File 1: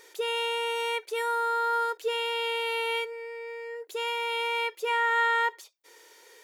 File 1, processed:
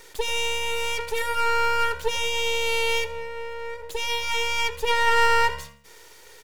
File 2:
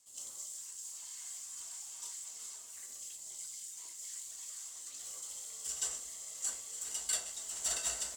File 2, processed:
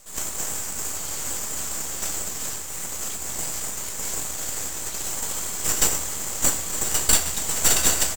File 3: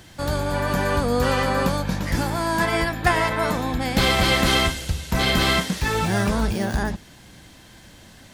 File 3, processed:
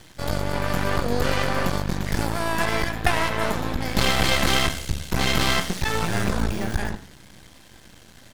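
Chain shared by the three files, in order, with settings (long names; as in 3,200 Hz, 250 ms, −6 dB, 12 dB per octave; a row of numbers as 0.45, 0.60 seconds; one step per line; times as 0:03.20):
hum removal 93.67 Hz, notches 29
half-wave rectification
echo with shifted repeats 82 ms, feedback 34%, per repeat +71 Hz, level −19 dB
loudness normalisation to −24 LKFS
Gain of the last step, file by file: +9.5, +20.5, +2.0 decibels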